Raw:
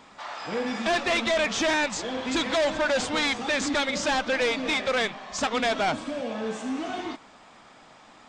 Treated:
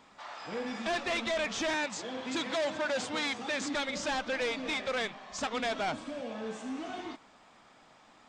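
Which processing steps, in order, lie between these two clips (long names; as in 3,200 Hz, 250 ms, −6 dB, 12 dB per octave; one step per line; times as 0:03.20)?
0:01.74–0:03.75: high-pass filter 97 Hz 24 dB per octave
level −7.5 dB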